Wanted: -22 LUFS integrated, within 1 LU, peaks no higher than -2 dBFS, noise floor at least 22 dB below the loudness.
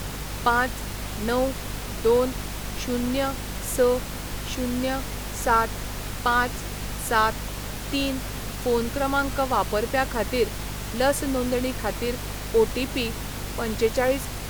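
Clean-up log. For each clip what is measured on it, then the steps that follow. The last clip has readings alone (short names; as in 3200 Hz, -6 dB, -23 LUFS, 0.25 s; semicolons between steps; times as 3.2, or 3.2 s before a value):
hum 50 Hz; harmonics up to 250 Hz; hum level -33 dBFS; noise floor -34 dBFS; noise floor target -48 dBFS; loudness -25.5 LUFS; peak -6.5 dBFS; loudness target -22.0 LUFS
-> notches 50/100/150/200/250 Hz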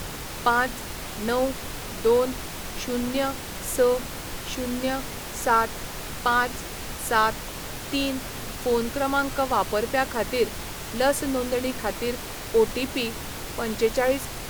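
hum none; noise floor -36 dBFS; noise floor target -48 dBFS
-> noise print and reduce 12 dB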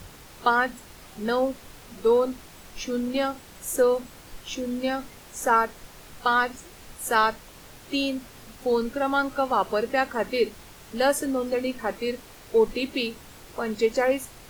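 noise floor -48 dBFS; loudness -26.0 LUFS; peak -6.5 dBFS; loudness target -22.0 LUFS
-> gain +4 dB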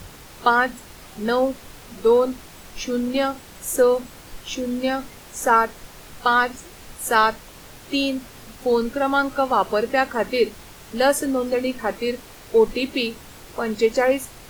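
loudness -22.0 LUFS; peak -2.5 dBFS; noise floor -44 dBFS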